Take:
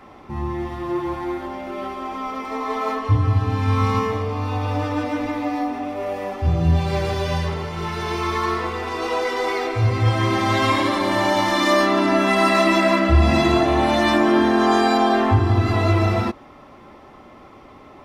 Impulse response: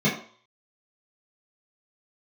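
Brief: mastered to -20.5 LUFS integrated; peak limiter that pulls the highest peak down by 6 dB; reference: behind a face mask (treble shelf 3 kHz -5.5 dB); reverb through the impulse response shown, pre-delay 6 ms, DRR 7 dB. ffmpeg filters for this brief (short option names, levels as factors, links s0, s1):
-filter_complex "[0:a]alimiter=limit=0.316:level=0:latency=1,asplit=2[s0][s1];[1:a]atrim=start_sample=2205,adelay=6[s2];[s1][s2]afir=irnorm=-1:irlink=0,volume=0.075[s3];[s0][s3]amix=inputs=2:normalize=0,highshelf=f=3000:g=-5.5,volume=1.06"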